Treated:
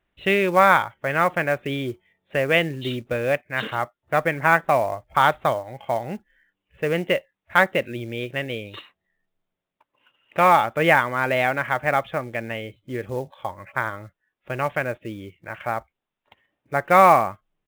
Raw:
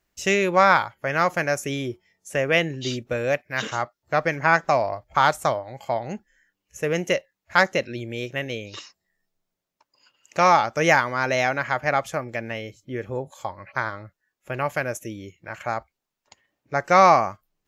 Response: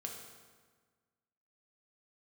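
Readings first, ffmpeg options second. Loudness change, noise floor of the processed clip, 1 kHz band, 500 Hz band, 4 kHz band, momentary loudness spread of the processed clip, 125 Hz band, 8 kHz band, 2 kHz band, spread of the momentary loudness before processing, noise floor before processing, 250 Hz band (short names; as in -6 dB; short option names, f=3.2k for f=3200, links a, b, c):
+1.0 dB, -84 dBFS, +1.0 dB, +1.0 dB, -0.5 dB, 16 LU, +1.0 dB, -7.0 dB, +1.0 dB, 16 LU, -84 dBFS, +1.0 dB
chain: -af "aresample=8000,aresample=44100,acrusher=bits=6:mode=log:mix=0:aa=0.000001,volume=1dB"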